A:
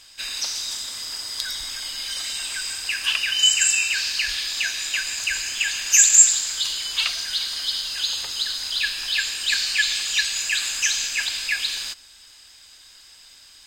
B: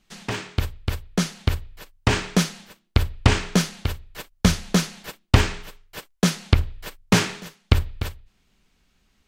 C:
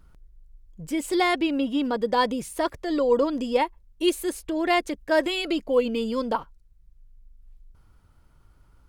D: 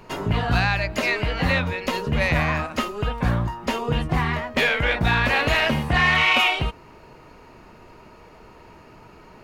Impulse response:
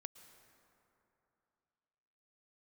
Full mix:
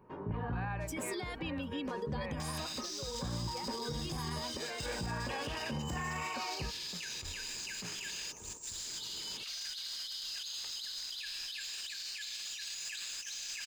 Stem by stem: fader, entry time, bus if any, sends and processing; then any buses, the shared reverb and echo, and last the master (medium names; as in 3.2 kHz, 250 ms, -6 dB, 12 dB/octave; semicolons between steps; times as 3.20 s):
+0.5 dB, 2.40 s, bus A, no send, median filter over 5 samples; compression 1.5:1, threshold -45 dBFS, peak gain reduction 11 dB; peaking EQ 6.3 kHz +11 dB 1.5 oct
-13.0 dB, 0.70 s, bus A, no send, auto duck -17 dB, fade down 1.45 s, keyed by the third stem
-0.5 dB, 0.00 s, bus A, no send, expander on every frequency bin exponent 1.5; high-pass 1.2 kHz 6 dB/octave
-7.0 dB, 0.00 s, no bus, no send, low-pass 1.2 kHz 12 dB/octave; random-step tremolo, depth 75%; comb of notches 680 Hz
bus A: 0.0 dB, compressor with a negative ratio -31 dBFS, ratio -0.5; peak limiter -32.5 dBFS, peak gain reduction 17 dB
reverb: none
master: peak limiter -29 dBFS, peak gain reduction 10 dB